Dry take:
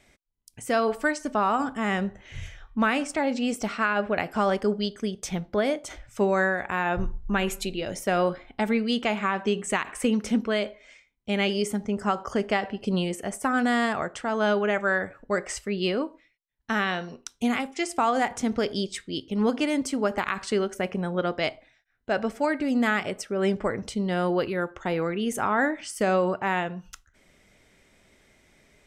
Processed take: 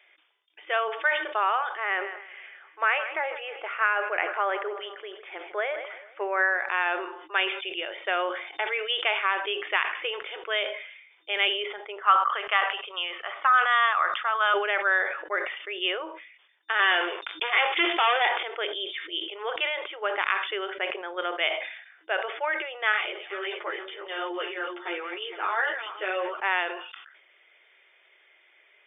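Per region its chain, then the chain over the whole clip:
0:01.76–0:06.69: low-pass filter 2,400 Hz 24 dB per octave + repeating echo 157 ms, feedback 50%, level −18 dB
0:12.02–0:14.54: high-pass filter 710 Hz + parametric band 1,200 Hz +12 dB 0.36 octaves
0:16.79–0:18.43: downward compressor 1.5 to 1, threshold −41 dBFS + leveller curve on the samples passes 5
0:22.92–0:26.41: feedback delay that plays each chunk backwards 231 ms, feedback 48%, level −10.5 dB + bass and treble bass +13 dB, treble +7 dB + string-ensemble chorus
whole clip: tilt shelving filter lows −10 dB, about 740 Hz; brick-wall band-pass 320–3,600 Hz; level that may fall only so fast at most 65 dB per second; level −3.5 dB

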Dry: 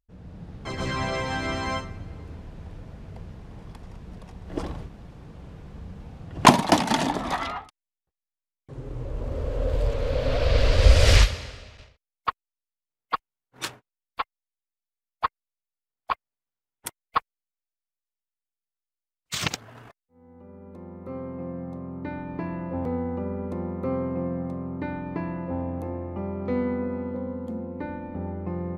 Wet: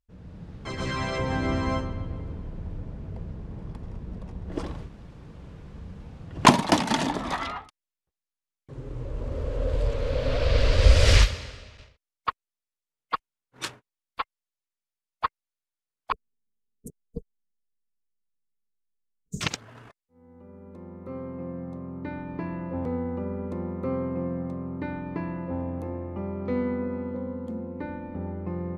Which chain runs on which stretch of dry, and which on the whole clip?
0:01.18–0:04.52: tilt shelving filter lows +5.5 dB, about 1,100 Hz + bucket-brigade delay 134 ms, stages 4,096, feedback 59%, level −13 dB
0:16.12–0:19.41: Chebyshev band-stop filter 460–6,500 Hz, order 4 + bass and treble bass +10 dB, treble −13 dB + comb filter 4.6 ms, depth 100%
whole clip: low-pass filter 11,000 Hz 12 dB per octave; parametric band 740 Hz −4 dB 0.35 octaves; level −1 dB

